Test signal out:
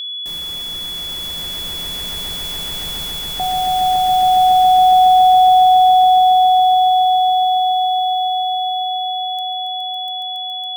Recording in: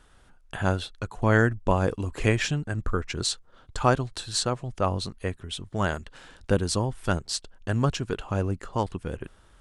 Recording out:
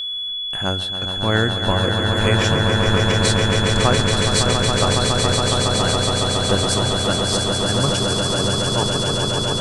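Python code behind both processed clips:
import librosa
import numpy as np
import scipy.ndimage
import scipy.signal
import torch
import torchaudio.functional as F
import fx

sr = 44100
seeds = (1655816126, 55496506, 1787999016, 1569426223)

p1 = fx.high_shelf(x, sr, hz=8400.0, db=9.5)
p2 = fx.hum_notches(p1, sr, base_hz=50, count=2)
p3 = p2 + fx.echo_swell(p2, sr, ms=139, loudest=8, wet_db=-6.0, dry=0)
p4 = p3 + 10.0 ** (-25.0 / 20.0) * np.sin(2.0 * np.pi * 3400.0 * np.arange(len(p3)) / sr)
y = p4 * 10.0 ** (1.5 / 20.0)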